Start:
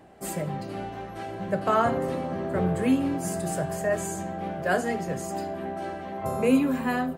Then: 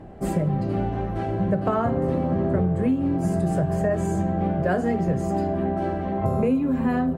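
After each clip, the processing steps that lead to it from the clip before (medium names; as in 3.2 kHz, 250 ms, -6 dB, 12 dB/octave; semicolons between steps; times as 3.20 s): tilt EQ -3.5 dB/octave; compression 10:1, threshold -23 dBFS, peak gain reduction 14 dB; trim +4.5 dB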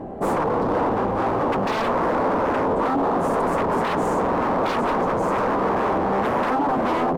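wavefolder -26.5 dBFS; graphic EQ 250/500/1000 Hz +9/+9/+11 dB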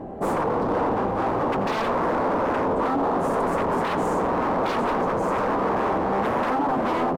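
delay 85 ms -14 dB; trim -2 dB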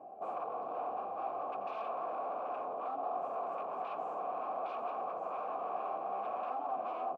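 in parallel at -7.5 dB: hard clipper -23.5 dBFS, distortion -11 dB; on the sum: vowel filter a; trim -8.5 dB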